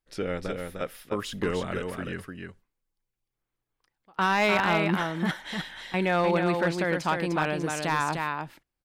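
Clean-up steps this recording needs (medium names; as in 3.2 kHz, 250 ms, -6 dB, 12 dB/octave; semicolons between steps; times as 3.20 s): clip repair -16.5 dBFS; inverse comb 302 ms -5 dB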